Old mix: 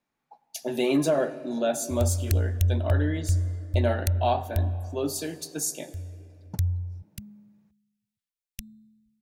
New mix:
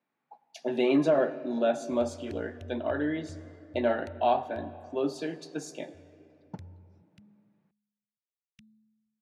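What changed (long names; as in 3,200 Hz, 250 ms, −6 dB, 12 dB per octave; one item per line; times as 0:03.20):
background −11.0 dB
master: add band-pass filter 170–3,000 Hz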